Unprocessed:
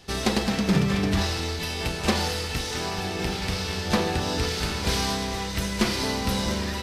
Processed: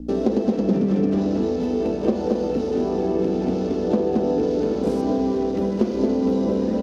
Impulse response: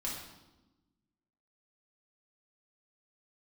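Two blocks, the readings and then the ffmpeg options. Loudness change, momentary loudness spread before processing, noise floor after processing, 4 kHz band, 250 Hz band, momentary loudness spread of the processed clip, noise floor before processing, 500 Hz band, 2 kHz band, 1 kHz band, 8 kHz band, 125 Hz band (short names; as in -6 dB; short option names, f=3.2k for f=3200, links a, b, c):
+4.0 dB, 5 LU, -25 dBFS, -16.5 dB, +7.5 dB, 3 LU, -31 dBFS, +9.5 dB, -15.0 dB, -2.0 dB, under -15 dB, -2.0 dB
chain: -filter_complex "[0:a]highpass=92,asplit=2[a][b];[b]aecho=0:1:225:0.596[c];[a][c]amix=inputs=2:normalize=0,afwtdn=0.0158,highshelf=f=2.9k:g=-8,areverse,acompressor=mode=upward:threshold=-27dB:ratio=2.5,areverse,aeval=exprs='val(0)+0.0141*(sin(2*PI*60*n/s)+sin(2*PI*2*60*n/s)/2+sin(2*PI*3*60*n/s)/3+sin(2*PI*4*60*n/s)/4+sin(2*PI*5*60*n/s)/5)':c=same,equalizer=f=125:t=o:w=1:g=-10,equalizer=f=250:t=o:w=1:g=12,equalizer=f=500:t=o:w=1:g=9,equalizer=f=1k:t=o:w=1:g=-6,equalizer=f=2k:t=o:w=1:g=-11,equalizer=f=4k:t=o:w=1:g=-7,acrossover=split=140|1100[d][e][f];[d]acompressor=threshold=-44dB:ratio=4[g];[e]acompressor=threshold=-22dB:ratio=4[h];[f]acompressor=threshold=-49dB:ratio=4[i];[g][h][i]amix=inputs=3:normalize=0,volume=4dB"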